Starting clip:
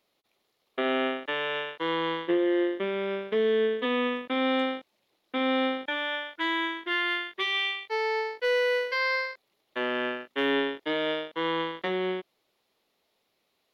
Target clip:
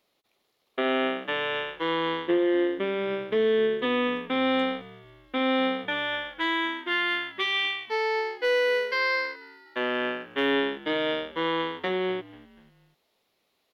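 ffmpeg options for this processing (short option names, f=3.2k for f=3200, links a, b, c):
-filter_complex "[0:a]asplit=4[a][b][c][d];[b]adelay=244,afreqshift=-72,volume=-21dB[e];[c]adelay=488,afreqshift=-144,volume=-27.6dB[f];[d]adelay=732,afreqshift=-216,volume=-34.1dB[g];[a][e][f][g]amix=inputs=4:normalize=0,volume=1.5dB"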